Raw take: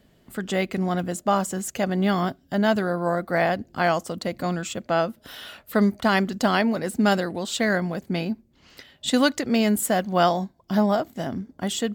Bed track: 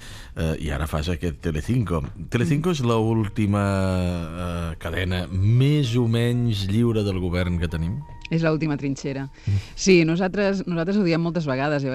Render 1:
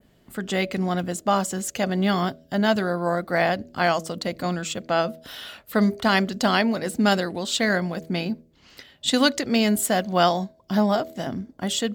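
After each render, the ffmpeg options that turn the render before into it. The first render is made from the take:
-af "bandreject=f=80.92:t=h:w=4,bandreject=f=161.84:t=h:w=4,bandreject=f=242.76:t=h:w=4,bandreject=f=323.68:t=h:w=4,bandreject=f=404.6:t=h:w=4,bandreject=f=485.52:t=h:w=4,bandreject=f=566.44:t=h:w=4,bandreject=f=647.36:t=h:w=4,adynamicequalizer=threshold=0.0112:dfrequency=4200:dqfactor=0.81:tfrequency=4200:tqfactor=0.81:attack=5:release=100:ratio=0.375:range=2.5:mode=boostabove:tftype=bell"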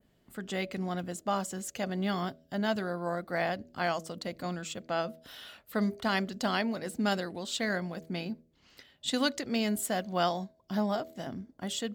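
-af "volume=0.335"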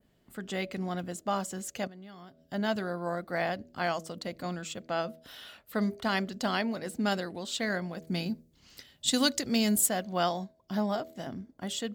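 -filter_complex "[0:a]asettb=1/sr,asplit=3[s0][s1][s2];[s0]atrim=end=1.874[s3];[s1]atrim=start=1.87:end=2.45,asetpts=PTS-STARTPTS,afade=t=in:d=0.004:c=qsin,afade=t=out:st=0.576:d=0.004:c=qsin,acompressor=threshold=0.00282:ratio=3:attack=3.2:release=140:knee=1:detection=peak[s4];[s2]atrim=start=2.446[s5];[s3][s4]acrossfade=d=0.004:c1=hsin:c2=qsin[s6];[s6][s5]acrossfade=d=0.004:c1=qsin:c2=hsin,asettb=1/sr,asplit=3[s7][s8][s9];[s7]atrim=end=8.074[s10];[s8]atrim=start=8.07:end=9.89,asetpts=PTS-STARTPTS,afade=t=in:d=0.004:c=qsin,afade=t=out:st=1.816:d=0.004:c=qsin,bass=f=250:g=6,treble=f=4000:g=10[s11];[s9]atrim=start=9.886[s12];[s10][s11]acrossfade=d=0.004:c1=hsin:c2=qsin[s13];[s13][s12]acrossfade=d=0.004:c1=qsin:c2=hsin"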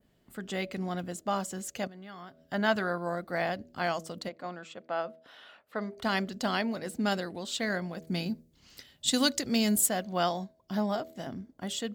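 -filter_complex "[0:a]asettb=1/sr,asplit=3[s0][s1][s2];[s0]atrim=end=1.944[s3];[s1]atrim=start=1.94:end=2.98,asetpts=PTS-STARTPTS,afade=t=in:d=0.004:c=qsin,afade=t=out:st=1.036:d=0.004:c=qsin,equalizer=f=1400:w=0.65:g=7.5[s4];[s2]atrim=start=2.976[s5];[s3][s4]acrossfade=d=0.004:c1=hsin:c2=qsin[s6];[s6][s5]acrossfade=d=0.004:c1=qsin:c2=hsin,asplit=3[s7][s8][s9];[s7]afade=t=out:st=4.28:d=0.02[s10];[s8]bandpass=f=910:t=q:w=0.6,afade=t=in:st=4.28:d=0.02,afade=t=out:st=5.96:d=0.02[s11];[s9]afade=t=in:st=5.96:d=0.02[s12];[s10][s11][s12]amix=inputs=3:normalize=0"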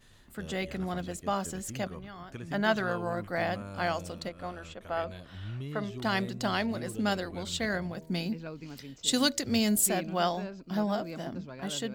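-filter_complex "[1:a]volume=0.0944[s0];[0:a][s0]amix=inputs=2:normalize=0"

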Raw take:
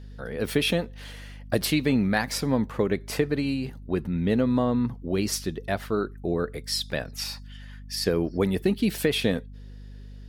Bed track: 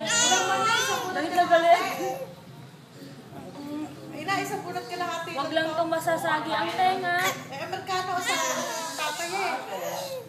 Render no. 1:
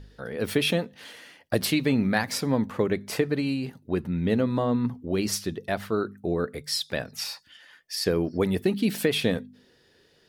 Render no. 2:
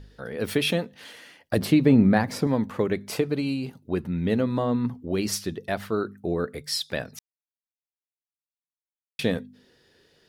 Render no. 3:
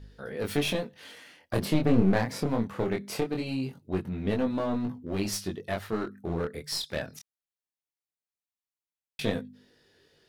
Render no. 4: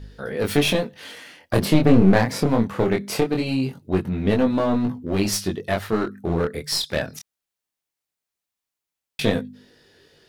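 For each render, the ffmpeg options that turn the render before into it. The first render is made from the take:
-af "bandreject=f=50:t=h:w=4,bandreject=f=100:t=h:w=4,bandreject=f=150:t=h:w=4,bandreject=f=200:t=h:w=4,bandreject=f=250:t=h:w=4"
-filter_complex "[0:a]asettb=1/sr,asplit=3[s0][s1][s2];[s0]atrim=end=1.574[s3];[s1]atrim=start=1.57:end=2.47,asetpts=PTS-STARTPTS,afade=t=in:d=0.004:c=qsin,afade=t=out:st=0.896:d=0.004:c=qsin,tiltshelf=f=1300:g=7[s4];[s2]atrim=start=2.466[s5];[s3][s4]acrossfade=d=0.004:c1=hsin:c2=qsin[s6];[s6][s5]acrossfade=d=0.004:c1=qsin:c2=hsin,asettb=1/sr,asplit=3[s7][s8][s9];[s7]atrim=end=3.114[s10];[s8]atrim=start=3.11:end=3.95,asetpts=PTS-STARTPTS,afade=t=in:d=0.004:c=qsin,afade=t=out:st=0.836:d=0.004:c=qsin,equalizer=f=1800:t=o:w=0.28:g=-8.5[s11];[s9]atrim=start=3.946[s12];[s10][s11]acrossfade=d=0.004:c1=hsin:c2=qsin[s13];[s13][s12]acrossfade=d=0.004:c1=qsin:c2=hsin,asplit=3[s14][s15][s16];[s14]atrim=end=7.19,asetpts=PTS-STARTPTS,afade=t=out:st=7.186:d=0.004:c=hsin[s17];[s15]atrim=start=7.19:end=9.19,asetpts=PTS-STARTPTS,volume=0[s18];[s16]atrim=start=9.19,asetpts=PTS-STARTPTS,afade=t=in:d=0.004:c=hsin[s19];[s17][s18][s19]concat=n=3:v=0:a=1"
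-af "aeval=exprs='clip(val(0),-1,0.0473)':c=same,flanger=delay=19.5:depth=6.8:speed=0.21"
-af "volume=2.66,alimiter=limit=0.708:level=0:latency=1"

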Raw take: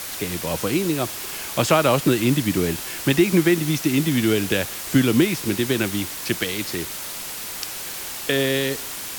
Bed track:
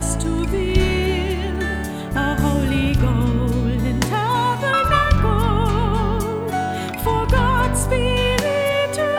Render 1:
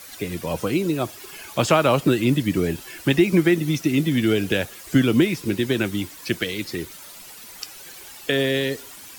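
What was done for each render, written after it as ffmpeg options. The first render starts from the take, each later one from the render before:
-af "afftdn=nr=12:nf=-32"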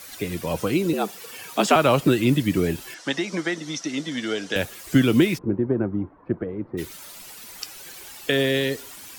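-filter_complex "[0:a]asettb=1/sr,asplit=3[s0][s1][s2];[s0]atrim=end=0.934[s3];[s1]atrim=start=0.93:end=1.76,asetpts=PTS-STARTPTS,afade=t=in:d=0.004:c=qsin,afade=t=out:st=0.826:d=0.004:c=qsin,afreqshift=88[s4];[s2]atrim=start=1.756[s5];[s3][s4]acrossfade=d=0.004:c1=hsin:c2=qsin[s6];[s6][s5]acrossfade=d=0.004:c1=qsin:c2=hsin,asettb=1/sr,asplit=3[s7][s8][s9];[s7]atrim=end=2.944[s10];[s8]atrim=start=2.94:end=4.56,asetpts=PTS-STARTPTS,afade=t=in:d=0.004:c=qsin,afade=t=out:st=1.616:d=0.004:c=qsin,highpass=360,equalizer=f=370:t=q:w=4:g=-10,equalizer=f=2500:t=q:w=4:g=-9,equalizer=f=5700:t=q:w=4:g=5,lowpass=f=7500:w=0.5412,lowpass=f=7500:w=1.3066[s11];[s9]atrim=start=4.556[s12];[s10][s11]acrossfade=d=0.004:c1=hsin:c2=qsin[s13];[s13][s12]acrossfade=d=0.004:c1=qsin:c2=hsin,asplit=3[s14][s15][s16];[s14]afade=t=out:st=5.37:d=0.02[s17];[s15]lowpass=f=1100:w=0.5412,lowpass=f=1100:w=1.3066,afade=t=in:st=5.37:d=0.02,afade=t=out:st=6.77:d=0.02[s18];[s16]afade=t=in:st=6.77:d=0.02[s19];[s17][s18][s19]amix=inputs=3:normalize=0"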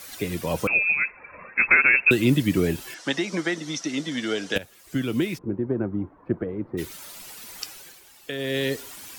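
-filter_complex "[0:a]asettb=1/sr,asplit=3[s0][s1][s2];[s0]atrim=end=0.674[s3];[s1]atrim=start=0.67:end=2.11,asetpts=PTS-STARTPTS,afade=t=in:d=0.004:c=qsin,afade=t=out:st=1.436:d=0.004:c=qsin,lowpass=f=2400:t=q:w=0.5098,lowpass=f=2400:t=q:w=0.6013,lowpass=f=2400:t=q:w=0.9,lowpass=f=2400:t=q:w=2.563,afreqshift=-2800[s4];[s2]atrim=start=2.106[s5];[s3][s4]acrossfade=d=0.004:c1=hsin:c2=qsin[s6];[s6][s5]acrossfade=d=0.004:c1=qsin:c2=hsin,asplit=4[s7][s8][s9][s10];[s7]atrim=end=4.58,asetpts=PTS-STARTPTS,afade=t=out:st=4.576:d=0.004:c=hsin:silence=0.158489[s11];[s8]atrim=start=4.58:end=8.01,asetpts=PTS-STARTPTS,afade=t=in:d=1.77:silence=0.158489,afade=t=out:st=3.08:d=0.35:silence=0.298538[s12];[s9]atrim=start=8.01:end=8.38,asetpts=PTS-STARTPTS,volume=0.299[s13];[s10]atrim=start=8.38,asetpts=PTS-STARTPTS,afade=t=in:d=0.35:silence=0.298538[s14];[s11][s12][s13][s14]concat=n=4:v=0:a=1"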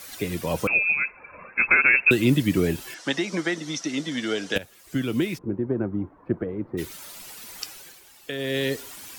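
-filter_complex "[0:a]asettb=1/sr,asplit=3[s0][s1][s2];[s0]atrim=end=0.784[s3];[s1]atrim=start=0.78:end=1.85,asetpts=PTS-STARTPTS,afade=t=in:d=0.004:c=qsin,afade=t=out:st=1.066:d=0.004:c=qsin,bandreject=f=1900:w=6.8[s4];[s2]atrim=start=1.846[s5];[s3][s4]acrossfade=d=0.004:c1=hsin:c2=qsin[s6];[s6][s5]acrossfade=d=0.004:c1=qsin:c2=hsin"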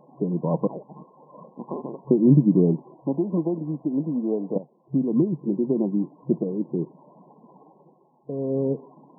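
-af "afftfilt=real='re*between(b*sr/4096,130,1100)':imag='im*between(b*sr/4096,130,1100)':win_size=4096:overlap=0.75,aemphasis=mode=reproduction:type=bsi"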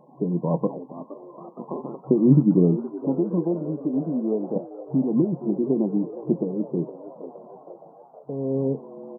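-filter_complex "[0:a]asplit=2[s0][s1];[s1]adelay=23,volume=0.2[s2];[s0][s2]amix=inputs=2:normalize=0,asplit=7[s3][s4][s5][s6][s7][s8][s9];[s4]adelay=467,afreqshift=90,volume=0.168[s10];[s5]adelay=934,afreqshift=180,volume=0.101[s11];[s6]adelay=1401,afreqshift=270,volume=0.0603[s12];[s7]adelay=1868,afreqshift=360,volume=0.0363[s13];[s8]adelay=2335,afreqshift=450,volume=0.0219[s14];[s9]adelay=2802,afreqshift=540,volume=0.013[s15];[s3][s10][s11][s12][s13][s14][s15]amix=inputs=7:normalize=0"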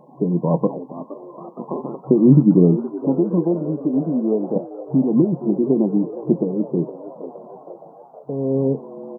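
-af "volume=1.78,alimiter=limit=0.794:level=0:latency=1"

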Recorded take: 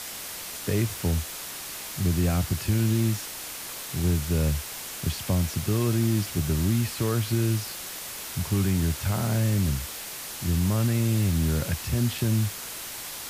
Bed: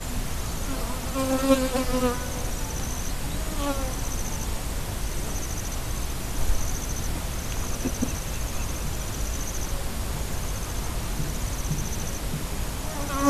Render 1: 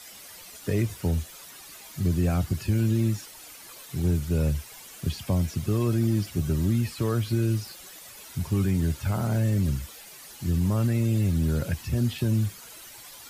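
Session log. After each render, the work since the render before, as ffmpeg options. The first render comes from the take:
-af "afftdn=nr=12:nf=-37"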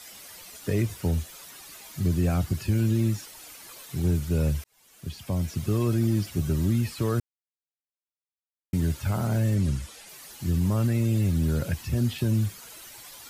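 -filter_complex "[0:a]asettb=1/sr,asplit=3[s0][s1][s2];[s0]atrim=end=9.554[s3];[s1]atrim=start=9.55:end=10.09,asetpts=PTS-STARTPTS,afade=t=in:d=0.004:c=qsin,afade=t=out:st=0.536:d=0.004:c=qsin,lowpass=f=11000:w=0.5412,lowpass=f=11000:w=1.3066[s4];[s2]atrim=start=10.086[s5];[s3][s4]acrossfade=d=0.004:c1=hsin:c2=qsin[s6];[s6][s5]acrossfade=d=0.004:c1=qsin:c2=hsin,asplit=4[s7][s8][s9][s10];[s7]atrim=end=4.64,asetpts=PTS-STARTPTS,afade=t=out:st=4.636:d=0.004:c=hsin[s11];[s8]atrim=start=4.64:end=7.2,asetpts=PTS-STARTPTS,afade=t=in:d=1.01,afade=t=out:st=2.556:d=0.004:c=hsin[s12];[s9]atrim=start=7.2:end=8.73,asetpts=PTS-STARTPTS,volume=0[s13];[s10]atrim=start=8.73,asetpts=PTS-STARTPTS,afade=t=in:d=0.004:c=hsin[s14];[s11][s12][s13][s14]concat=n=4:v=0:a=1"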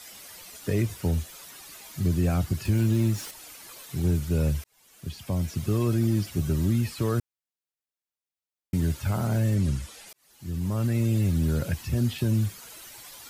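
-filter_complex "[0:a]asettb=1/sr,asplit=3[s0][s1][s2];[s0]atrim=end=2.654[s3];[s1]atrim=start=2.65:end=3.31,asetpts=PTS-STARTPTS,afade=t=in:d=0.004:c=qsin,afade=t=out:st=0.656:d=0.004:c=qsin,aeval=exprs='val(0)+0.5*0.0119*sgn(val(0))':c=same[s4];[s2]atrim=start=3.306[s5];[s3][s4]acrossfade=d=0.004:c1=hsin:c2=qsin[s6];[s6][s5]acrossfade=d=0.004:c1=qsin:c2=hsin,asplit=2[s7][s8];[s7]atrim=end=10.13,asetpts=PTS-STARTPTS,afade=t=out:st=10.126:d=0.004:c=hsin[s9];[s8]atrim=start=10.13,asetpts=PTS-STARTPTS,afade=t=in:d=0.87[s10];[s9][s10]concat=n=2:v=0:a=1"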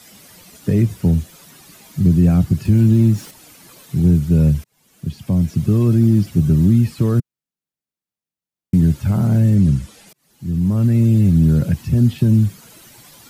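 -af "equalizer=f=170:t=o:w=2:g=14.5"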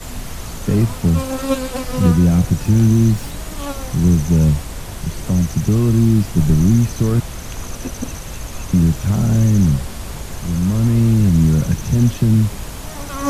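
-filter_complex "[1:a]volume=1.12[s0];[0:a][s0]amix=inputs=2:normalize=0"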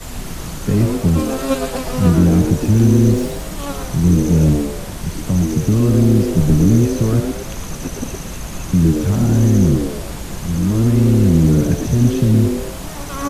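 -filter_complex "[0:a]asplit=5[s0][s1][s2][s3][s4];[s1]adelay=113,afreqshift=140,volume=0.422[s5];[s2]adelay=226,afreqshift=280,volume=0.14[s6];[s3]adelay=339,afreqshift=420,volume=0.0457[s7];[s4]adelay=452,afreqshift=560,volume=0.0151[s8];[s0][s5][s6][s7][s8]amix=inputs=5:normalize=0"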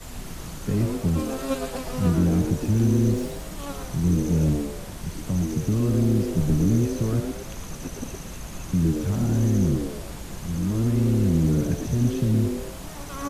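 -af "volume=0.376"

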